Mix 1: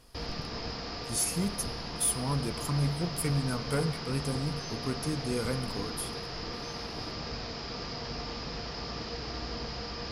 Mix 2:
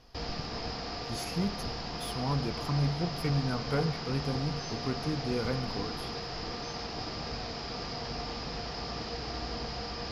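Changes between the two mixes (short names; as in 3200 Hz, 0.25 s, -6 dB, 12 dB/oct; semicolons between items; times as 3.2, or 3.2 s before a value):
speech: add running mean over 5 samples; master: add bell 750 Hz +6 dB 0.23 oct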